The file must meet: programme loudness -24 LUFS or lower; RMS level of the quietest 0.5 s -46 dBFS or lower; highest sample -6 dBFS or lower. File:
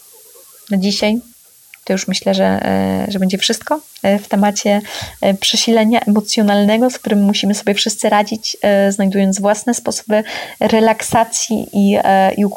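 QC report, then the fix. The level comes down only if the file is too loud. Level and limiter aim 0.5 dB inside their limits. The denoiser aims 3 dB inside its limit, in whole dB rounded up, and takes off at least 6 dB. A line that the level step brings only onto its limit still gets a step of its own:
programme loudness -14.5 LUFS: fail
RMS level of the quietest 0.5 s -45 dBFS: fail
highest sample -3.0 dBFS: fail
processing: trim -10 dB

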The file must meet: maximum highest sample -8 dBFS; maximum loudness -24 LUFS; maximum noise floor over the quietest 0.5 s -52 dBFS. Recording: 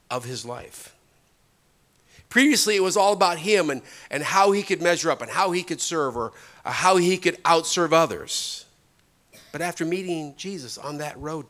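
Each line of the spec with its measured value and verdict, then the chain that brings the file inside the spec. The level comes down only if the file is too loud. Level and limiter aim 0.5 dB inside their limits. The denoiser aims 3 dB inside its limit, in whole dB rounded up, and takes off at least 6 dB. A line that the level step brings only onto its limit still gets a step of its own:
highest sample -4.5 dBFS: fail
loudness -22.5 LUFS: fail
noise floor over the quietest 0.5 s -63 dBFS: pass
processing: trim -2 dB; peak limiter -8.5 dBFS

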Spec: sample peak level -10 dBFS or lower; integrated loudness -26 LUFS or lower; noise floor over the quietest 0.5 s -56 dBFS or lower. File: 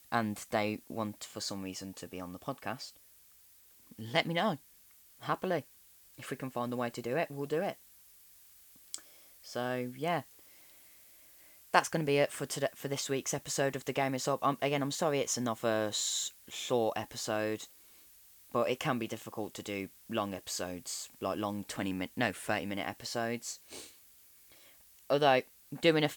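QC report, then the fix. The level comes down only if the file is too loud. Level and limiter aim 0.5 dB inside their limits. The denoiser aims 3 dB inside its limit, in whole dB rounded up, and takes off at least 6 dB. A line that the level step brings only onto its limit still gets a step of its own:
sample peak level -8.5 dBFS: fail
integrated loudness -34.5 LUFS: pass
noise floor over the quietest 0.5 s -61 dBFS: pass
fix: peak limiter -10.5 dBFS

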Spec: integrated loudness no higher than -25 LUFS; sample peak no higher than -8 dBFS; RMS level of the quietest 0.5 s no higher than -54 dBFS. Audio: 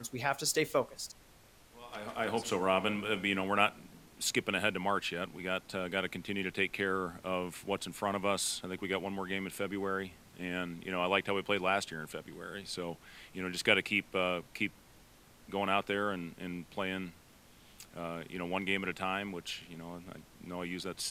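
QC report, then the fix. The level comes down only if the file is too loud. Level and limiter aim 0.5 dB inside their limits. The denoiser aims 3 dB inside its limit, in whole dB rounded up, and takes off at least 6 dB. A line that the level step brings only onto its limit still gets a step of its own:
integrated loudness -34.5 LUFS: pass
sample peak -11.5 dBFS: pass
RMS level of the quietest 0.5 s -60 dBFS: pass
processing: none needed

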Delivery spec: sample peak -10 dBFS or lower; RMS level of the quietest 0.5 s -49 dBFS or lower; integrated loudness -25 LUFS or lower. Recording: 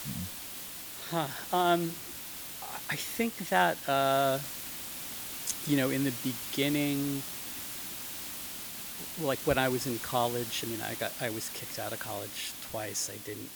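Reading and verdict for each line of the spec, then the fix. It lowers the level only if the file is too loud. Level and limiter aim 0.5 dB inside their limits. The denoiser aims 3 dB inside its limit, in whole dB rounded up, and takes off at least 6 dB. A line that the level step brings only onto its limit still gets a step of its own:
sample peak -11.0 dBFS: pass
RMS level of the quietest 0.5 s -42 dBFS: fail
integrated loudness -32.0 LUFS: pass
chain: noise reduction 10 dB, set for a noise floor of -42 dBFS

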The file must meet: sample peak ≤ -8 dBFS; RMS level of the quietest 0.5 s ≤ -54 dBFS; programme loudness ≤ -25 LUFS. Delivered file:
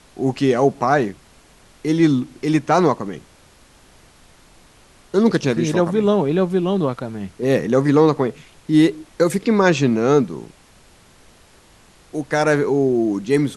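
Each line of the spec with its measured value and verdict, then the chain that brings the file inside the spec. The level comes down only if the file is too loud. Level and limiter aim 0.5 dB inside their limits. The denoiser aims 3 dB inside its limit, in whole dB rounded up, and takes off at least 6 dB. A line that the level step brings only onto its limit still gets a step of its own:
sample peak -3.0 dBFS: fail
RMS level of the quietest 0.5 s -50 dBFS: fail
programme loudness -18.5 LUFS: fail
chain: trim -7 dB

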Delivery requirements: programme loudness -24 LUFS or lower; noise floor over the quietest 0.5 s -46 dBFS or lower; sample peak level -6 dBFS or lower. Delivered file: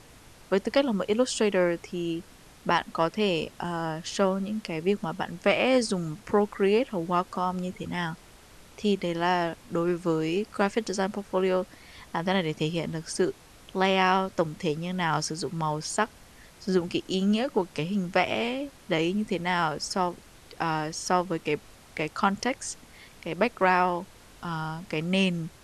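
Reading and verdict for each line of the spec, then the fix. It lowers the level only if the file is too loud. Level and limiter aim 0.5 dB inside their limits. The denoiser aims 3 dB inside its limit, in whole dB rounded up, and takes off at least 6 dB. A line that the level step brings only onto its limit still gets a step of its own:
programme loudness -27.5 LUFS: pass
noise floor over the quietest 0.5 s -51 dBFS: pass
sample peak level -10.5 dBFS: pass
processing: none needed

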